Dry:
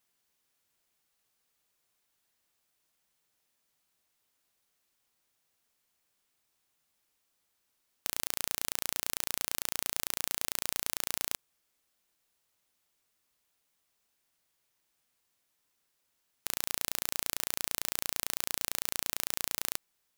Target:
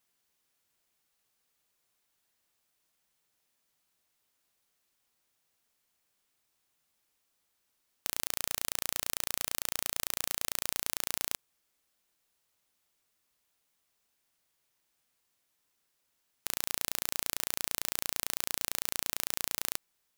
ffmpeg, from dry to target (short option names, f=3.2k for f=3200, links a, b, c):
-filter_complex "[0:a]asettb=1/sr,asplit=3[a][b][c];[a]atrim=end=8.244[d];[b]atrim=start=8.24:end=10.67,asetpts=PTS-STARTPTS,afade=t=in:d=0.004:c=qsin,afade=t=out:st=2.426:d=0.004:c=qsin,asplit=2[e][f];[f]adelay=33,volume=-13.5dB[g];[e][g]amix=inputs=2:normalize=0,atrim=end_sample=107163[h];[c]atrim=start=10.666[i];[d][h]acrossfade=d=0.004:c1=hsin:c2=qsin[j];[j][i]acrossfade=d=0.004:c1=qsin:c2=hsin"